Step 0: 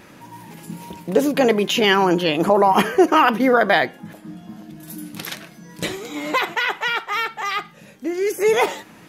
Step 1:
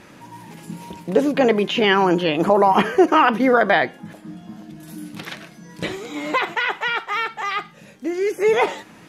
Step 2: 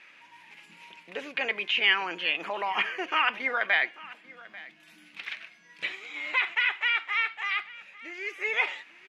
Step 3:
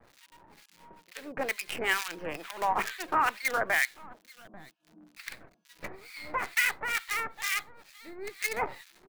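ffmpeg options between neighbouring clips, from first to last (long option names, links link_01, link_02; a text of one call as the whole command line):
ffmpeg -i in.wav -filter_complex "[0:a]lowpass=11000,acrossover=split=3700[link_01][link_02];[link_02]acompressor=threshold=-42dB:ratio=4:attack=1:release=60[link_03];[link_01][link_03]amix=inputs=2:normalize=0" out.wav
ffmpeg -i in.wav -af "bandpass=frequency=2400:width_type=q:width=2.9:csg=0,aecho=1:1:841:0.1,volume=2dB" out.wav
ffmpeg -i in.wav -filter_complex "[0:a]acrossover=split=420|780|2400[link_01][link_02][link_03][link_04];[link_03]acrusher=bits=6:dc=4:mix=0:aa=0.000001[link_05];[link_04]aeval=exprs='0.168*(cos(1*acos(clip(val(0)/0.168,-1,1)))-cos(1*PI/2))+0.0596*(cos(3*acos(clip(val(0)/0.168,-1,1)))-cos(3*PI/2))':channel_layout=same[link_06];[link_01][link_02][link_05][link_06]amix=inputs=4:normalize=0,acrossover=split=1400[link_07][link_08];[link_07]aeval=exprs='val(0)*(1-1/2+1/2*cos(2*PI*2.2*n/s))':channel_layout=same[link_09];[link_08]aeval=exprs='val(0)*(1-1/2-1/2*cos(2*PI*2.2*n/s))':channel_layout=same[link_10];[link_09][link_10]amix=inputs=2:normalize=0,volume=5.5dB" out.wav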